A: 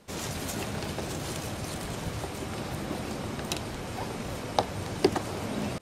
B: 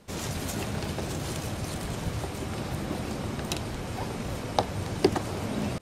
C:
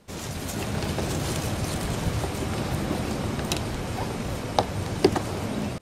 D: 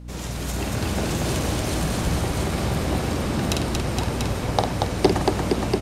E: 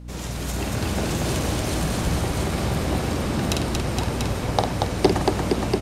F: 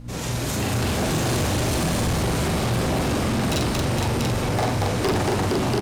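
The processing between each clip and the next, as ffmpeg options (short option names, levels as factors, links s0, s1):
-af "lowshelf=f=180:g=5"
-af "dynaudnorm=f=260:g=5:m=2,volume=0.891"
-filter_complex "[0:a]aeval=exprs='val(0)+0.0126*(sin(2*PI*60*n/s)+sin(2*PI*2*60*n/s)/2+sin(2*PI*3*60*n/s)/3+sin(2*PI*4*60*n/s)/4+sin(2*PI*5*60*n/s)/5)':c=same,asplit=2[s0][s1];[s1]aecho=0:1:50|232|467|690:0.501|0.668|0.562|0.562[s2];[s0][s2]amix=inputs=2:normalize=0"
-af anull
-filter_complex "[0:a]flanger=delay=7.4:depth=9.7:regen=-48:speed=1.5:shape=triangular,asplit=2[s0][s1];[s1]adelay=42,volume=0.75[s2];[s0][s2]amix=inputs=2:normalize=0,asoftclip=type=hard:threshold=0.0531,volume=2.11"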